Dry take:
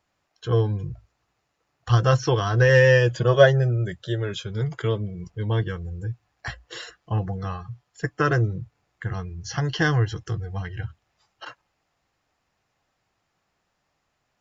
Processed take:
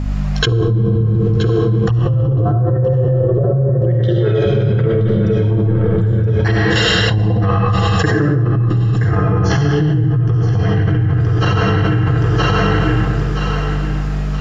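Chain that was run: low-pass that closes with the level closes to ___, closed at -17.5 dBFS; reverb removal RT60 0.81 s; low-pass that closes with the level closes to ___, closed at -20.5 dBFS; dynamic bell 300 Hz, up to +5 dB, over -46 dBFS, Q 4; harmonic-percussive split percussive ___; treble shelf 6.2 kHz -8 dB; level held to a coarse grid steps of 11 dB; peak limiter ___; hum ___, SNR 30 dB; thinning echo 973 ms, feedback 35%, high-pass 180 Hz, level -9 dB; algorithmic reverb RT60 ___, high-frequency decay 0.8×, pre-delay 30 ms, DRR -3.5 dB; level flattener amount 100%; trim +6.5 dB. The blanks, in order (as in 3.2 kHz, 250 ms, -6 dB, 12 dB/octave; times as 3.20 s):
310 Hz, 2.1 kHz, -10 dB, -21.5 dBFS, 50 Hz, 1.9 s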